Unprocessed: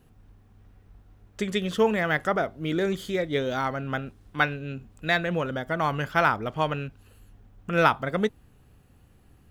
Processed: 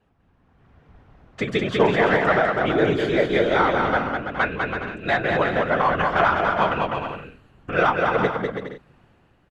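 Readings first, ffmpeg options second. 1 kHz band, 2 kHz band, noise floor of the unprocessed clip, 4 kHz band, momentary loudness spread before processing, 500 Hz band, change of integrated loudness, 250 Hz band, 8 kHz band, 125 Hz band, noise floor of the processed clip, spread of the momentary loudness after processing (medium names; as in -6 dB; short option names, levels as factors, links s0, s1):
+6.5 dB, +5.5 dB, -57 dBFS, +3.0 dB, 11 LU, +6.5 dB, +5.5 dB, +4.0 dB, no reading, +2.0 dB, -61 dBFS, 10 LU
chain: -filter_complex "[0:a]aemphasis=mode=reproduction:type=50fm,acrossover=split=610|1300[s0][s1][s2];[s2]alimiter=limit=0.075:level=0:latency=1:release=110[s3];[s0][s1][s3]amix=inputs=3:normalize=0,dynaudnorm=f=100:g=13:m=3.98,asplit=2[s4][s5];[s5]highpass=f=720:p=1,volume=3.55,asoftclip=type=tanh:threshold=0.891[s6];[s4][s6]amix=inputs=2:normalize=0,lowpass=f=2700:p=1,volume=0.501,afftfilt=real='hypot(re,im)*cos(2*PI*random(0))':imag='hypot(re,im)*sin(2*PI*random(1))':win_size=512:overlap=0.75,asplit=2[s7][s8];[s8]aecho=0:1:200|330|414.5|469.4|505.1:0.631|0.398|0.251|0.158|0.1[s9];[s7][s9]amix=inputs=2:normalize=0"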